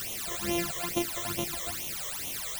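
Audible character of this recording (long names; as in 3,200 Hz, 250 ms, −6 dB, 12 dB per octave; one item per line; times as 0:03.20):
a buzz of ramps at a fixed pitch in blocks of 128 samples
chopped level 2.4 Hz, depth 60%, duty 70%
a quantiser's noise floor 6 bits, dither triangular
phaser sweep stages 12, 2.3 Hz, lowest notch 250–1,600 Hz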